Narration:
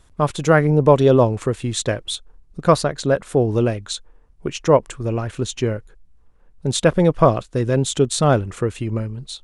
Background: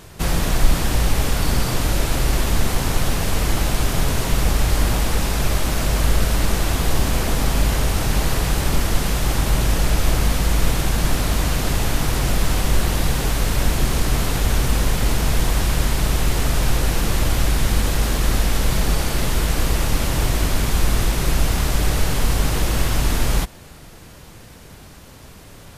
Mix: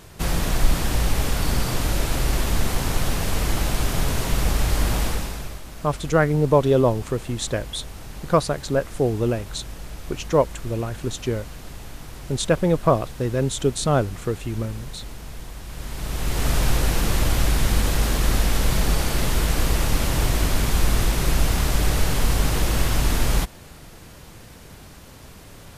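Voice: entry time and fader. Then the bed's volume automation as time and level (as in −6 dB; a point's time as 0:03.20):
5.65 s, −4.0 dB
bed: 0:05.06 −3 dB
0:05.63 −18 dB
0:15.63 −18 dB
0:16.49 −1.5 dB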